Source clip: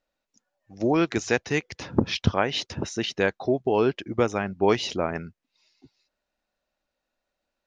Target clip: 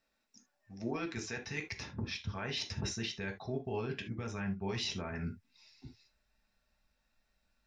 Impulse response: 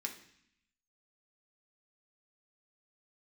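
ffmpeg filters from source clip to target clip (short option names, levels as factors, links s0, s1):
-filter_complex "[0:a]asubboost=boost=7:cutoff=110,areverse,acompressor=threshold=0.0251:ratio=16,areverse,alimiter=level_in=1.88:limit=0.0631:level=0:latency=1:release=71,volume=0.531[s0];[1:a]atrim=start_sample=2205,afade=t=out:st=0.13:d=0.01,atrim=end_sample=6174[s1];[s0][s1]afir=irnorm=-1:irlink=0,volume=1.58"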